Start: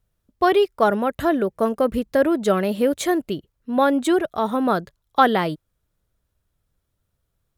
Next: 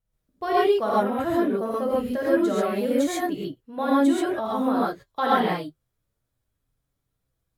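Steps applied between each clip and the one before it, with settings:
reverb whose tail is shaped and stops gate 160 ms rising, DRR −7 dB
flanger 0.27 Hz, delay 6 ms, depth 4.1 ms, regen −50%
level −7.5 dB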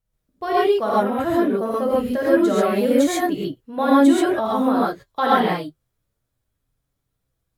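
speech leveller 2 s
level +4 dB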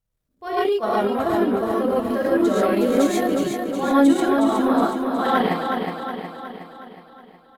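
transient designer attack −11 dB, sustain −7 dB
on a send: repeating echo 366 ms, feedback 54%, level −5 dB

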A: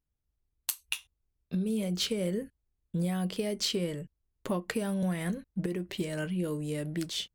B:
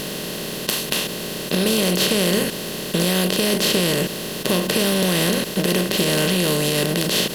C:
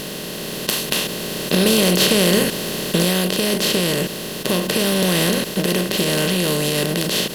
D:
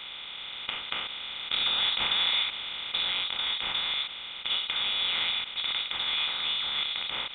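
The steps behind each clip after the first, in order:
compressor on every frequency bin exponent 0.2; in parallel at +2 dB: brickwall limiter −14 dBFS, peak gain reduction 11 dB; on the sum: level −1.5 dB
automatic gain control; level −1 dB
three-way crossover with the lows and the highs turned down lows −22 dB, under 490 Hz, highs −24 dB, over 2,000 Hz; voice inversion scrambler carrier 4,000 Hz; level −2 dB

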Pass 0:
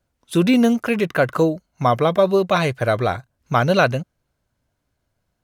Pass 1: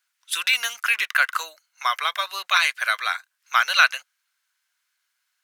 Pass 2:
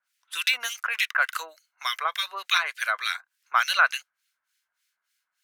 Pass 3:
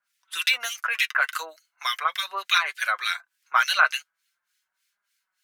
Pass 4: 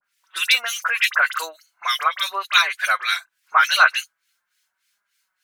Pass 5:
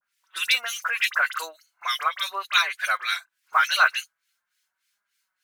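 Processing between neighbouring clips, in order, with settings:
high-pass filter 1,400 Hz 24 dB per octave; level +7 dB
two-band tremolo in antiphase 3.4 Hz, depth 100%, crossover 1,600 Hz; level +2 dB
flanger 0.4 Hz, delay 4.9 ms, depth 1.7 ms, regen +32%; level +5 dB
all-pass dispersion highs, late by 45 ms, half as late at 2,600 Hz; level +5 dB
one scale factor per block 7 bits; level −4.5 dB

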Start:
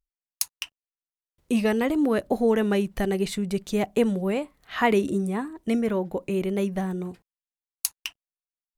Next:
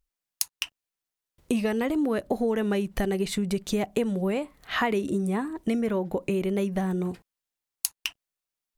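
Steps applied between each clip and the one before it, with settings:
downward compressor 4 to 1, threshold −31 dBFS, peak gain reduction 13 dB
level +6.5 dB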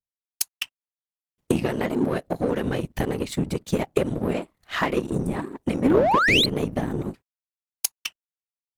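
random phases in short frames
sound drawn into the spectrogram rise, 0:05.82–0:06.46, 210–4,400 Hz −21 dBFS
power curve on the samples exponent 1.4
level +5.5 dB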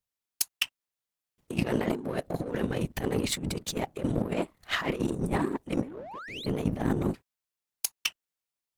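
brickwall limiter −12.5 dBFS, peak gain reduction 8 dB
compressor whose output falls as the input rises −29 dBFS, ratio −0.5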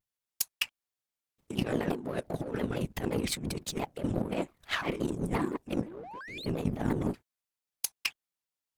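pitch modulation by a square or saw wave saw down 5.8 Hz, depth 250 cents
level −2.5 dB

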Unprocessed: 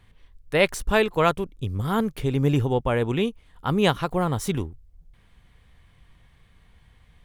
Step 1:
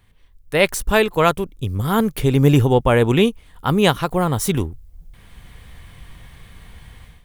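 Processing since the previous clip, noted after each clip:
high-shelf EQ 9,700 Hz +11 dB
automatic gain control gain up to 15 dB
level −1 dB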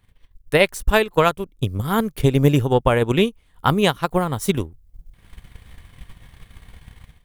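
transient designer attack +9 dB, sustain −6 dB
level −4.5 dB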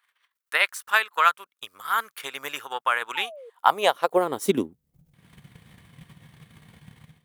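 sound drawn into the spectrogram fall, 0:03.15–0:03.50, 440–920 Hz −27 dBFS
high-pass filter sweep 1,300 Hz → 150 Hz, 0:03.31–0:05.02
level −4 dB

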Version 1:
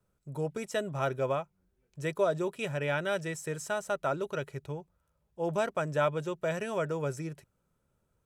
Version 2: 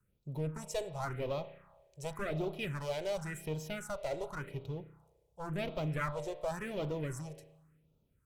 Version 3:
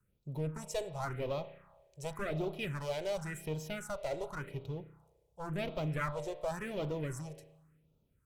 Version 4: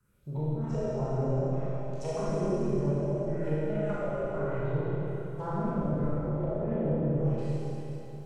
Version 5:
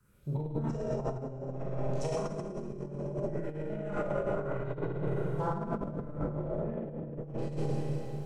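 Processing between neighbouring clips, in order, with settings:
asymmetric clip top −37.5 dBFS; spring reverb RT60 1.1 s, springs 32 ms, chirp 25 ms, DRR 10 dB; all-pass phaser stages 4, 0.91 Hz, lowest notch 210–1,700 Hz
no processing that can be heard
peak hold with a decay on every bin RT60 0.50 s; treble cut that deepens with the level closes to 320 Hz, closed at −33 dBFS; four-comb reverb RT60 3.5 s, combs from 27 ms, DRR −9.5 dB; level +2.5 dB
compressor whose output falls as the input rises −33 dBFS, ratio −0.5

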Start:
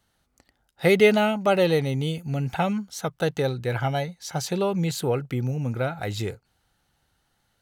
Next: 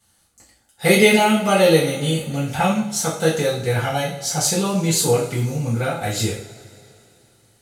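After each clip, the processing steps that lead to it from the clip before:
parametric band 8,900 Hz +13 dB 1.4 octaves
coupled-rooms reverb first 0.45 s, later 3 s, from −22 dB, DRR −9 dB
level −4 dB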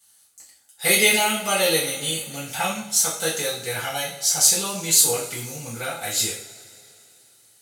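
spectral tilt +3.5 dB per octave
level −5 dB

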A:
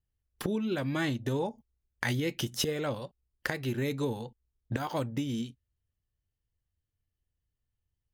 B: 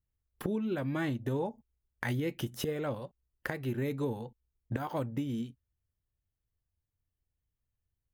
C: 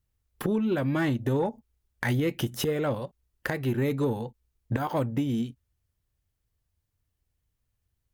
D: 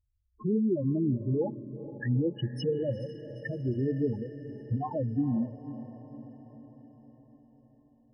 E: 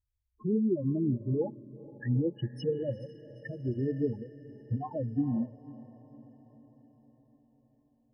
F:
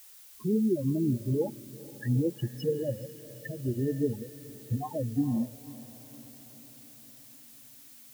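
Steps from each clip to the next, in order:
parametric band 5,200 Hz −10.5 dB 1.9 octaves; level −1.5 dB
harmonic generator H 5 −20 dB, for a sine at −17 dBFS; every ending faded ahead of time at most 570 dB per second; level +4 dB
spectral peaks only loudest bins 4; feedback delay with all-pass diffusion 456 ms, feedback 59%, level −13.5 dB
expander for the loud parts 1.5 to 1, over −38 dBFS
background noise blue −54 dBFS; level +1.5 dB

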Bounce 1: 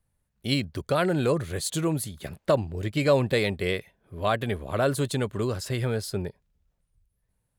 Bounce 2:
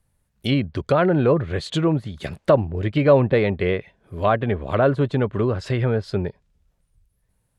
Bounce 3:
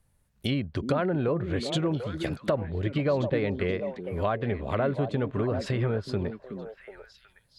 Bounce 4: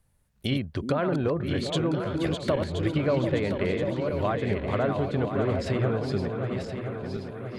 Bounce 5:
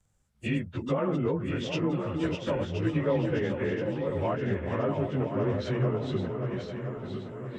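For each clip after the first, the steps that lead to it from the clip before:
treble cut that deepens with the level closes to 1,400 Hz, closed at −23.5 dBFS; dynamic equaliser 3,100 Hz, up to +5 dB, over −47 dBFS, Q 1.1; level +6.5 dB
downward compressor 2.5 to 1, threshold −28 dBFS, peak gain reduction 12.5 dB; echo through a band-pass that steps 370 ms, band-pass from 250 Hz, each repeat 1.4 octaves, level −4 dB
feedback delay that plays each chunk backwards 512 ms, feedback 69%, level −6 dB
partials spread apart or drawn together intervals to 92%

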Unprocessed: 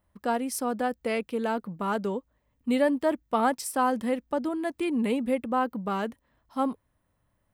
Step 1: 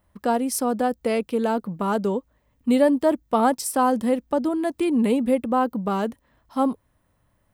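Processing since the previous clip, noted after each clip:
dynamic equaliser 2,000 Hz, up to −7 dB, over −43 dBFS, Q 0.89
level +6.5 dB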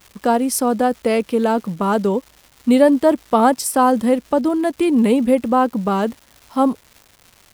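surface crackle 430 per second −40 dBFS
level +5.5 dB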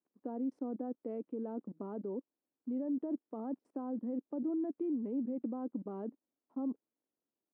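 output level in coarse steps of 24 dB
four-pole ladder band-pass 330 Hz, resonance 50%
level −3.5 dB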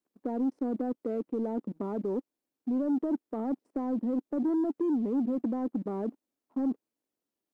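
leveller curve on the samples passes 1
level +5 dB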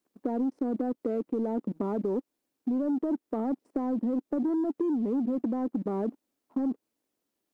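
downward compressor, threshold −32 dBFS, peak gain reduction 7 dB
level +6 dB

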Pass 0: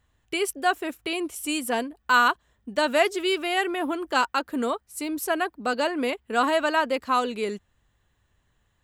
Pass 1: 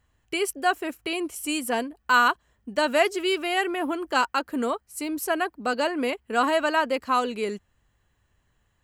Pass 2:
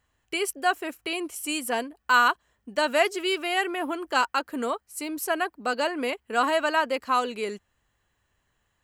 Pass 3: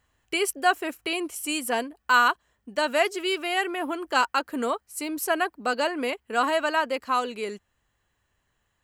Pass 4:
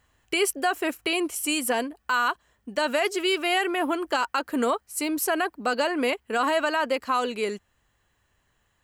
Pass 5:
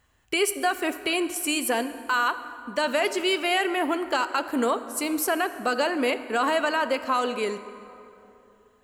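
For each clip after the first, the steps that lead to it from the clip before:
notch filter 3,600 Hz, Q 9.8
low-shelf EQ 280 Hz −7.5 dB
speech leveller within 3 dB 2 s
brickwall limiter −18.5 dBFS, peak gain reduction 10 dB; level +4 dB
dense smooth reverb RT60 3 s, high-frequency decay 0.55×, DRR 11 dB

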